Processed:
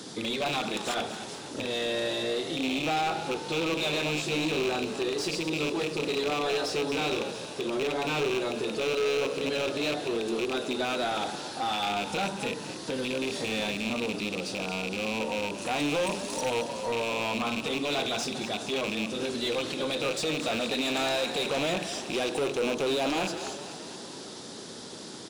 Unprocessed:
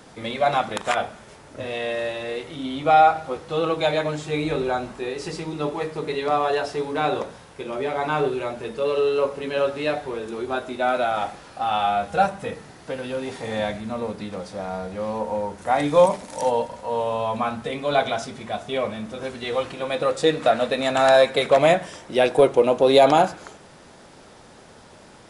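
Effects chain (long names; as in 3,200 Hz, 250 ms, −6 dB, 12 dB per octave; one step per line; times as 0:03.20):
loose part that buzzes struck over −34 dBFS, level −10 dBFS
high-pass filter 110 Hz 12 dB per octave
flat-topped bell 1,200 Hz −14.5 dB 2.7 octaves
in parallel at −1 dB: downward compressor, threshold −37 dBFS, peak gain reduction 19.5 dB
on the sum: brickwall limiter −18 dBFS, peak gain reduction 11 dB
mid-hump overdrive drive 19 dB, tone 3,800 Hz, clips at −18 dBFS
on a send: echo with shifted repeats 229 ms, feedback 59%, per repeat +58 Hz, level −12 dB
on the sum: level −3 dB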